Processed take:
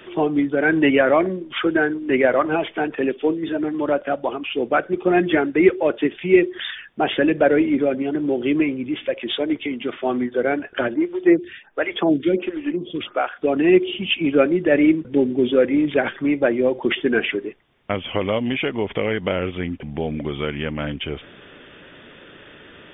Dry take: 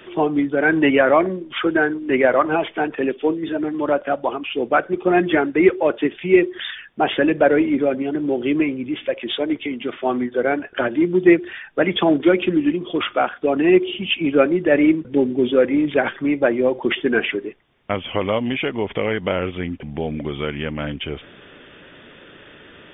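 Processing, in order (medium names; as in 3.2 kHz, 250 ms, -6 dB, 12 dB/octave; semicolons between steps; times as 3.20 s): dynamic bell 1 kHz, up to -4 dB, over -28 dBFS, Q 1.3; 10.94–13.39 s: lamp-driven phase shifter 1.4 Hz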